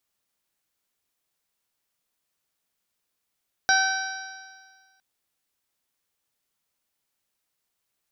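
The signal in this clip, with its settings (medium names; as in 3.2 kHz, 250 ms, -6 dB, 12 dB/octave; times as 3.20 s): stretched partials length 1.31 s, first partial 765 Hz, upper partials 4.5/-12/-18/-5.5/-6.5/-2 dB, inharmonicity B 0.0022, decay 1.65 s, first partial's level -22 dB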